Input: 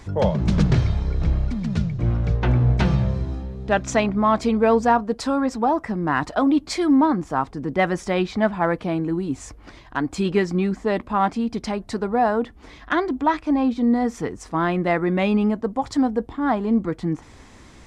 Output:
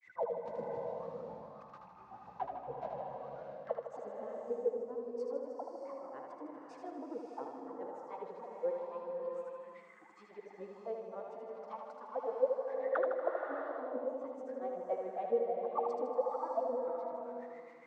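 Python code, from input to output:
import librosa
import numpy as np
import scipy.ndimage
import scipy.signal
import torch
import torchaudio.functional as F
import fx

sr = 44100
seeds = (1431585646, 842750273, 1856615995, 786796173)

p1 = fx.pitch_ramps(x, sr, semitones=2.5, every_ms=211)
p2 = fx.highpass(p1, sr, hz=120.0, slope=6)
p3 = fx.peak_eq(p2, sr, hz=7100.0, db=8.0, octaves=1.6)
p4 = fx.auto_wah(p3, sr, base_hz=470.0, top_hz=2200.0, q=21.0, full_db=-17.0, direction='down')
p5 = fx.granulator(p4, sr, seeds[0], grain_ms=135.0, per_s=7.2, spray_ms=34.0, spread_st=0)
p6 = fx.spec_box(p5, sr, start_s=3.96, length_s=1.84, low_hz=450.0, high_hz=4200.0, gain_db=-9)
p7 = p6 + fx.echo_feedback(p6, sr, ms=78, feedback_pct=59, wet_db=-5.5, dry=0)
p8 = fx.rev_bloom(p7, sr, seeds[1], attack_ms=630, drr_db=1.5)
y = p8 * 10.0 ** (3.5 / 20.0)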